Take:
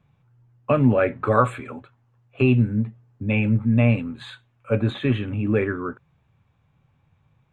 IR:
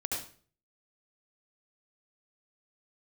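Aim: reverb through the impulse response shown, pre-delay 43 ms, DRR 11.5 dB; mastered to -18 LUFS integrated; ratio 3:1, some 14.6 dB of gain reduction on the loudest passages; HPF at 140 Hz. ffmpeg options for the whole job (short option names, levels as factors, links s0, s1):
-filter_complex "[0:a]highpass=140,acompressor=threshold=0.02:ratio=3,asplit=2[s0][s1];[1:a]atrim=start_sample=2205,adelay=43[s2];[s1][s2]afir=irnorm=-1:irlink=0,volume=0.178[s3];[s0][s3]amix=inputs=2:normalize=0,volume=7.5"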